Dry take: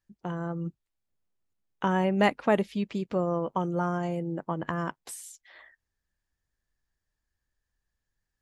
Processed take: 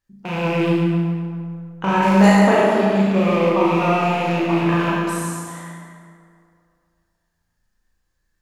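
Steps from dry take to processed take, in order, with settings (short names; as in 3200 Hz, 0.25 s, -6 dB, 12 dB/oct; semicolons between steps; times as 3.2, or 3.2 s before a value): rattling part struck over -39 dBFS, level -27 dBFS; 2.02–2.44 resonant high shelf 4200 Hz +8.5 dB, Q 1.5; on a send: flutter echo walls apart 6.1 m, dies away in 1.3 s; on the sum: vibrato 7.9 Hz 21 cents; plate-style reverb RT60 2.3 s, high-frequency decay 0.4×, DRR -1 dB; gain +2.5 dB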